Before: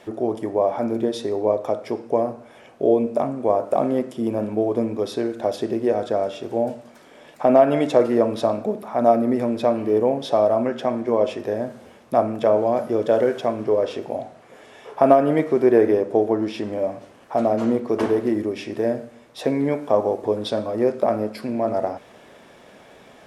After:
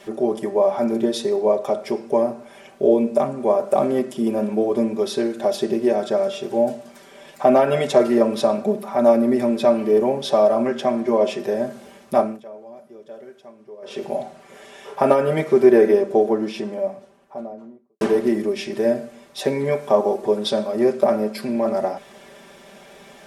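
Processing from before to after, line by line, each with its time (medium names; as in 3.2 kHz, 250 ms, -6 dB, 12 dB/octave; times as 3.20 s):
12.19–14.04 s: dip -23 dB, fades 0.23 s
16.03–18.01 s: studio fade out
whole clip: treble shelf 3.6 kHz +6.5 dB; comb 5.1 ms, depth 94%; trim -1 dB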